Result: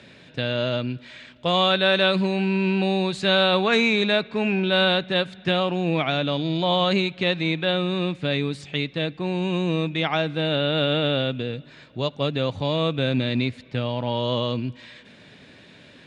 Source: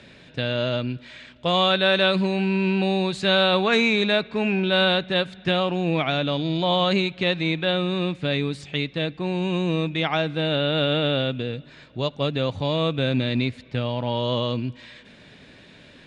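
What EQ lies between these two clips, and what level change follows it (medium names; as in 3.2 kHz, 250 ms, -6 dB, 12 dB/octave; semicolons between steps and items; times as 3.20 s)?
high-pass 74 Hz; 0.0 dB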